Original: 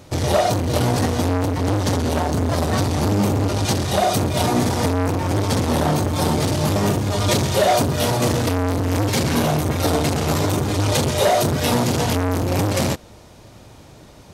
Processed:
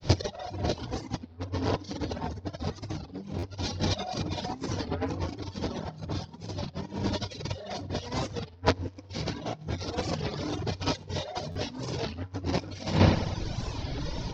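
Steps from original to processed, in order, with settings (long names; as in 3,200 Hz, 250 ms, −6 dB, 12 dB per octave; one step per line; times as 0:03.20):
dynamic equaliser 130 Hz, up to −7 dB, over −40 dBFS, Q 5.6
granular cloud 175 ms, grains 20 per second, spray 29 ms
Butterworth low-pass 5,600 Hz 48 dB per octave
bass and treble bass +5 dB, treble +10 dB
notch filter 1,200 Hz, Q 12
delay with a low-pass on its return 96 ms, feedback 65%, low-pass 3,000 Hz, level −8 dB
on a send at −5.5 dB: convolution reverb, pre-delay 40 ms
on the sum: compressor whose output falls as the input rises −27 dBFS, ratio −0.5
reverb reduction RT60 1 s
buffer that repeats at 0:03.38/0:11.51, samples 512, times 3
wow of a warped record 33 1/3 rpm, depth 160 cents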